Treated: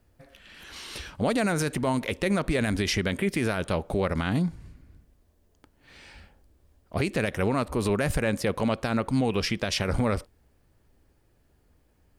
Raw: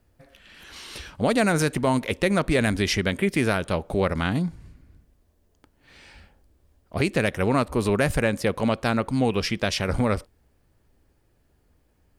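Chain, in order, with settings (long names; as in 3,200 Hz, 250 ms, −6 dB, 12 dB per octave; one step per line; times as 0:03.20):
brickwall limiter −16 dBFS, peak gain reduction 7.5 dB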